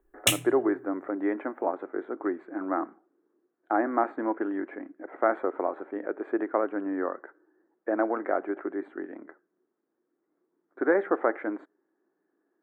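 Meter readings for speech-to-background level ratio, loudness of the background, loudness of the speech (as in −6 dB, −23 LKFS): −3.0 dB, −27.0 LKFS, −30.0 LKFS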